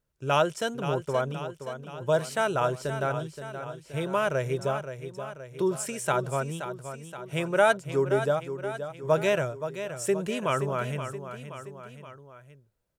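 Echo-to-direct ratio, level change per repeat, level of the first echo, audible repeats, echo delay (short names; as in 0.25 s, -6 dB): -8.5 dB, -5.0 dB, -10.0 dB, 3, 0.524 s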